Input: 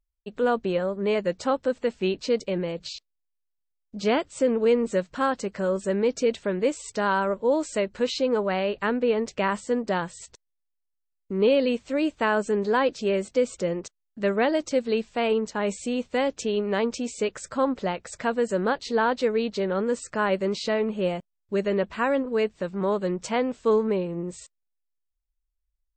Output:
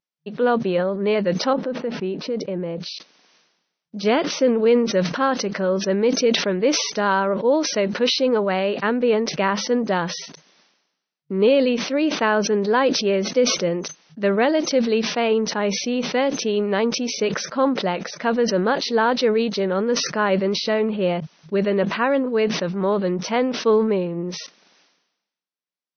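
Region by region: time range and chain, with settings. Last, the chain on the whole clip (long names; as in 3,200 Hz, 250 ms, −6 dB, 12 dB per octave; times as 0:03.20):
0:01.53–0:02.80: low-pass filter 1,000 Hz 6 dB per octave + downward compressor 2.5 to 1, threshold −27 dBFS
whole clip: brick-wall band-pass 160–6,200 Hz; level that may fall only so fast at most 58 dB per second; level +4 dB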